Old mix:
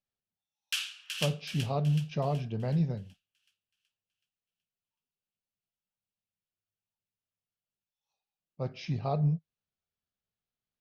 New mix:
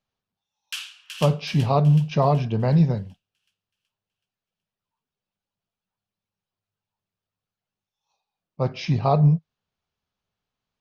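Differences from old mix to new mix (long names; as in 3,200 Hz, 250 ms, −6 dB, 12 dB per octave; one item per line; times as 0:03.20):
speech +10.5 dB
master: add parametric band 1,000 Hz +6.5 dB 0.52 octaves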